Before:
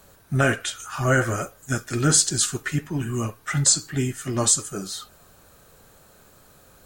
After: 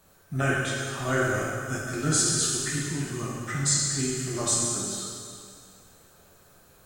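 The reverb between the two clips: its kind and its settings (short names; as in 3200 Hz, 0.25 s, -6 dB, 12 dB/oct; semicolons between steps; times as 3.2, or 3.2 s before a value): plate-style reverb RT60 2.2 s, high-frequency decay 1×, DRR -4.5 dB; gain -9 dB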